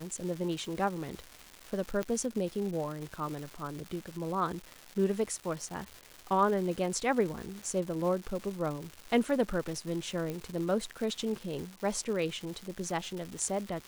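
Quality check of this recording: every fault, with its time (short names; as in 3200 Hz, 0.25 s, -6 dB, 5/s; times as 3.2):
crackle 470/s -38 dBFS
2.03 pop -19 dBFS
10.3 pop -22 dBFS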